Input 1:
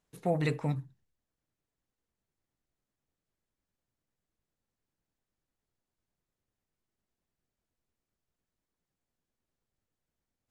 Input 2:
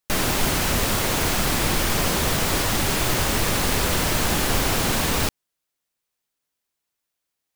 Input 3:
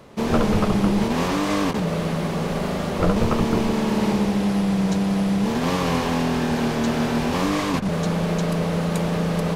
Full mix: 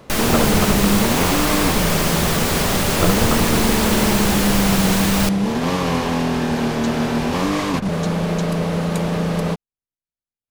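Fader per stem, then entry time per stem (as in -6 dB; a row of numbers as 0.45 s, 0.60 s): -14.5 dB, +2.0 dB, +2.0 dB; 0.00 s, 0.00 s, 0.00 s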